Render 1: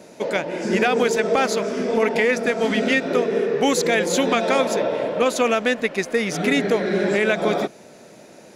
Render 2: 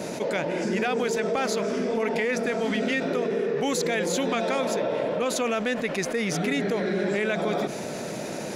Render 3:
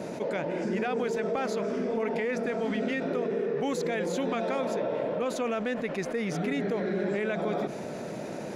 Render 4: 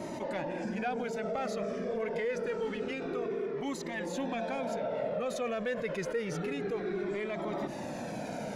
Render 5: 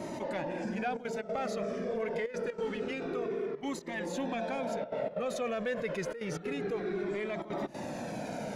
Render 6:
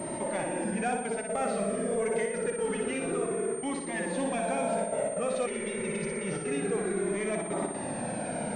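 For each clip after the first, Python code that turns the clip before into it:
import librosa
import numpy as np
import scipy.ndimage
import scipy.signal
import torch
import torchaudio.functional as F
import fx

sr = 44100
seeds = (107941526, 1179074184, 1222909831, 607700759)

y1 = fx.peak_eq(x, sr, hz=150.0, db=3.5, octaves=0.87)
y1 = fx.env_flatten(y1, sr, amount_pct=70)
y1 = y1 * librosa.db_to_amplitude(-9.0)
y2 = fx.high_shelf(y1, sr, hz=2600.0, db=-10.0)
y2 = y2 * librosa.db_to_amplitude(-3.0)
y3 = fx.rider(y2, sr, range_db=3, speed_s=0.5)
y3 = 10.0 ** (-20.5 / 20.0) * np.tanh(y3 / 10.0 ** (-20.5 / 20.0))
y3 = fx.comb_cascade(y3, sr, direction='falling', hz=0.27)
y3 = y3 * librosa.db_to_amplitude(1.5)
y4 = fx.step_gate(y3, sr, bpm=186, pattern='xxxxxxxxxxxx.xx.', floor_db=-12.0, edge_ms=4.5)
y5 = fx.echo_feedback(y4, sr, ms=60, feedback_pct=55, wet_db=-5.0)
y5 = fx.spec_repair(y5, sr, seeds[0], start_s=5.49, length_s=0.73, low_hz=210.0, high_hz=2500.0, source='after')
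y5 = fx.pwm(y5, sr, carrier_hz=8700.0)
y5 = y5 * librosa.db_to_amplitude(2.5)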